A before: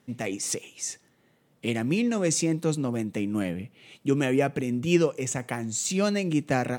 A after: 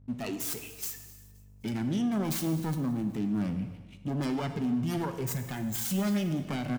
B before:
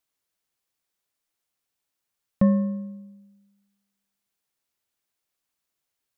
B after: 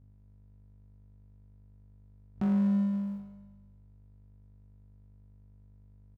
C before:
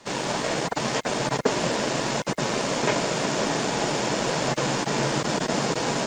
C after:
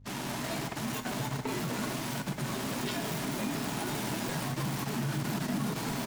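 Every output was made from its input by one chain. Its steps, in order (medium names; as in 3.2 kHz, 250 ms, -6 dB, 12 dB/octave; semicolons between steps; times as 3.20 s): self-modulated delay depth 0.58 ms; graphic EQ with 31 bands 100 Hz -5 dB, 250 Hz +6 dB, 500 Hz -10 dB; gate -48 dBFS, range -37 dB; hum 50 Hz, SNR 29 dB; peaking EQ 110 Hz +9 dB 0.97 oct; power-law waveshaper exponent 0.7; spectral noise reduction 7 dB; feedback delay 260 ms, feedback 44%, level -23.5 dB; peak limiter -18.5 dBFS; gated-style reverb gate 440 ms falling, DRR 8 dB; trim -6.5 dB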